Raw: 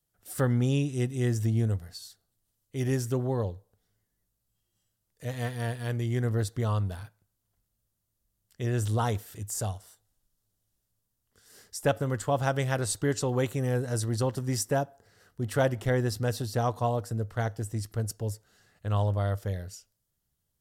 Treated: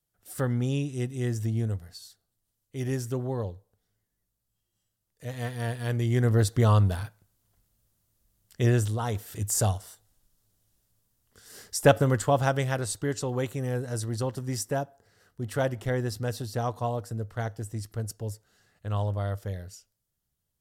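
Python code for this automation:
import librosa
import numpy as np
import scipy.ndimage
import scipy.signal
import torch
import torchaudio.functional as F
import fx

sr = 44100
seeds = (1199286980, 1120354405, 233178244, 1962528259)

y = fx.gain(x, sr, db=fx.line((5.26, -2.0), (6.63, 7.5), (8.69, 7.5), (8.99, -4.0), (9.43, 7.0), (11.99, 7.0), (12.93, -2.0)))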